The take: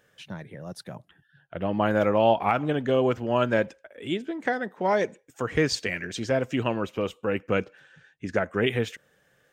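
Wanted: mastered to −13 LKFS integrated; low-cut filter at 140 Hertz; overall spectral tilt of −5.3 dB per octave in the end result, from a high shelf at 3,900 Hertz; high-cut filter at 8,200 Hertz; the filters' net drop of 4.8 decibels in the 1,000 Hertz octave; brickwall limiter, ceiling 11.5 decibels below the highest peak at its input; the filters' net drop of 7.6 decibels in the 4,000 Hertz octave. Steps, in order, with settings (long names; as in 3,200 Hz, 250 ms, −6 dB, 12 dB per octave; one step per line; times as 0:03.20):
high-pass filter 140 Hz
low-pass filter 8,200 Hz
parametric band 1,000 Hz −6 dB
high-shelf EQ 3,900 Hz −8 dB
parametric band 4,000 Hz −5 dB
level +21.5 dB
brickwall limiter −1.5 dBFS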